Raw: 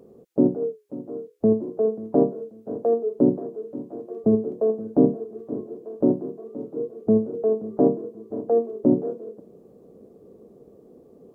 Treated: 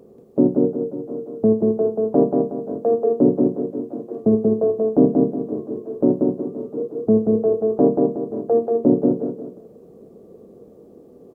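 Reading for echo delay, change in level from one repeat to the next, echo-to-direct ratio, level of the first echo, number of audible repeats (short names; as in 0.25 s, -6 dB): 0.184 s, -9.0 dB, -2.5 dB, -3.0 dB, 3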